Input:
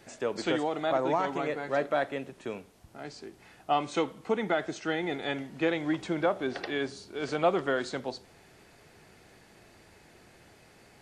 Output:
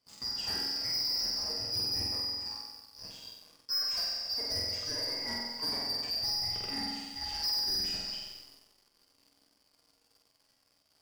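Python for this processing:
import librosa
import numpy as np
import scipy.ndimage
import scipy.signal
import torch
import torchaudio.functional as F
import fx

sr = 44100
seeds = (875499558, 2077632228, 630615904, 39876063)

y = fx.band_shuffle(x, sr, order='2341')
y = fx.comb_fb(y, sr, f0_hz=93.0, decay_s=0.61, harmonics='odd', damping=0.0, mix_pct=80)
y = fx.room_flutter(y, sr, wall_m=8.0, rt60_s=1.2)
y = fx.rev_schroeder(y, sr, rt60_s=2.4, comb_ms=30, drr_db=12.0)
y = fx.leveller(y, sr, passes=3)
y = F.gain(torch.from_numpy(y), -6.0).numpy()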